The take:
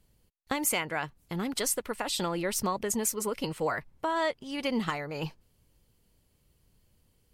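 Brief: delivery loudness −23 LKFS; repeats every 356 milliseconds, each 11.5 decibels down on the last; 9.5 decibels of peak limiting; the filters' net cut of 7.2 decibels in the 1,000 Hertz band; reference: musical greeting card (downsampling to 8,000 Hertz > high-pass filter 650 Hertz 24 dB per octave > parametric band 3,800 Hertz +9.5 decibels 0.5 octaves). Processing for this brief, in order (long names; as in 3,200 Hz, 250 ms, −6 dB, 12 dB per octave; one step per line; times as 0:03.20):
parametric band 1,000 Hz −8.5 dB
brickwall limiter −24 dBFS
repeating echo 356 ms, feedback 27%, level −11.5 dB
downsampling to 8,000 Hz
high-pass filter 650 Hz 24 dB per octave
parametric band 3,800 Hz +9.5 dB 0.5 octaves
level +15.5 dB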